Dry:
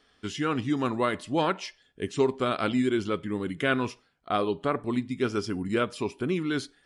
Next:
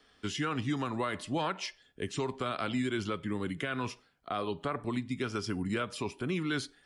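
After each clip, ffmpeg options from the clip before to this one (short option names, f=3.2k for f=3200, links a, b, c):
-filter_complex "[0:a]acrossover=split=210|560|2900[a][b][c][d];[b]acompressor=threshold=-37dB:ratio=6[e];[a][e][c][d]amix=inputs=4:normalize=0,alimiter=limit=-23dB:level=0:latency=1:release=110"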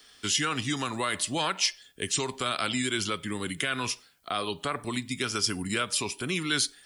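-af "crystalizer=i=7:c=0"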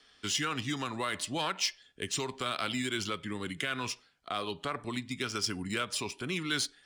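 -af "adynamicsmooth=sensitivity=5:basefreq=5.6k,volume=-4dB"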